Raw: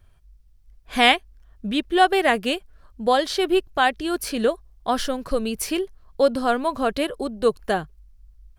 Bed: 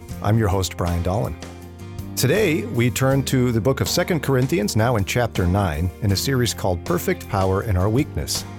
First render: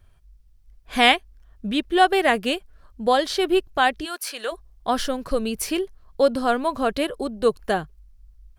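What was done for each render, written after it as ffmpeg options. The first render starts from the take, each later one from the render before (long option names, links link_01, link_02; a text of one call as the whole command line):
ffmpeg -i in.wav -filter_complex "[0:a]asplit=3[link_01][link_02][link_03];[link_01]afade=type=out:start_time=4.04:duration=0.02[link_04];[link_02]highpass=830,afade=type=in:start_time=4.04:duration=0.02,afade=type=out:start_time=4.51:duration=0.02[link_05];[link_03]afade=type=in:start_time=4.51:duration=0.02[link_06];[link_04][link_05][link_06]amix=inputs=3:normalize=0" out.wav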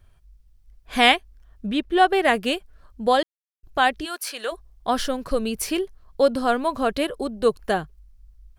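ffmpeg -i in.wav -filter_complex "[0:a]asettb=1/sr,asplit=3[link_01][link_02][link_03];[link_01]atrim=end=1.664[link_04];[link_02]atrim=start=1.66:end=2.25,asetpts=PTS-STARTPTS,afade=type=in:duration=0.004:curve=qsin,afade=type=out:start_time=0.586:duration=0.004:curve=qsin,highshelf=frequency=3700:gain=-6.5[link_05];[link_03]atrim=start=2.246[link_06];[link_04][link_05]acrossfade=duration=0.004:curve1=hsin:curve2=qsin[link_07];[link_07][link_06]acrossfade=duration=0.004:curve1=qsin:curve2=hsin,asplit=3[link_08][link_09][link_10];[link_08]atrim=end=3.23,asetpts=PTS-STARTPTS,afade=type=out:start_time=3.226:duration=0.004:curve=hsin[link_11];[link_09]atrim=start=3.23:end=3.63,asetpts=PTS-STARTPTS,volume=0[link_12];[link_10]atrim=start=3.63,asetpts=PTS-STARTPTS,afade=type=in:duration=0.004:curve=hsin[link_13];[link_11][link_12][link_13]concat=n=3:v=0:a=1" out.wav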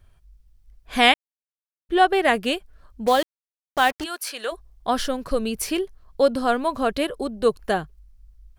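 ffmpeg -i in.wav -filter_complex "[0:a]asettb=1/sr,asplit=3[link_01][link_02][link_03];[link_01]atrim=end=3.064[link_04];[link_02]atrim=start=3.06:end=4.04,asetpts=PTS-STARTPTS,afade=type=in:duration=0.004:curve=qsin,afade=type=out:start_time=0.976:duration=0.004:curve=qsin,acrusher=bits=4:mix=0:aa=0.5[link_05];[link_03]atrim=start=4.036[link_06];[link_04][link_05]acrossfade=duration=0.004:curve1=hsin:curve2=qsin[link_07];[link_07][link_06]acrossfade=duration=0.004:curve1=qsin:curve2=hsin,asplit=3[link_08][link_09][link_10];[link_08]atrim=end=1.14,asetpts=PTS-STARTPTS,afade=type=out:start_time=1.136:duration=0.004:curve=hsin[link_11];[link_09]atrim=start=1.14:end=1.89,asetpts=PTS-STARTPTS,volume=0[link_12];[link_10]atrim=start=1.89,asetpts=PTS-STARTPTS,afade=type=in:duration=0.004:curve=hsin[link_13];[link_11][link_12][link_13]concat=n=3:v=0:a=1" out.wav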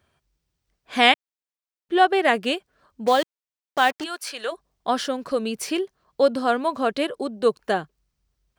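ffmpeg -i in.wav -af "highpass=180,equalizer=frequency=12000:width=1.9:gain=-11.5" out.wav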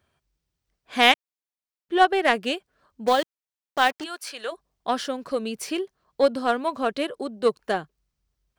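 ffmpeg -i in.wav -af "aeval=exprs='0.891*(cos(1*acos(clip(val(0)/0.891,-1,1)))-cos(1*PI/2))+0.0398*(cos(7*acos(clip(val(0)/0.891,-1,1)))-cos(7*PI/2))':channel_layout=same" out.wav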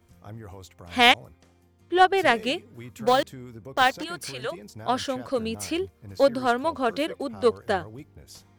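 ffmpeg -i in.wav -i bed.wav -filter_complex "[1:a]volume=-23dB[link_01];[0:a][link_01]amix=inputs=2:normalize=0" out.wav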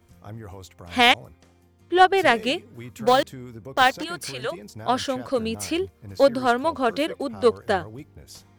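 ffmpeg -i in.wav -af "volume=2.5dB,alimiter=limit=-2dB:level=0:latency=1" out.wav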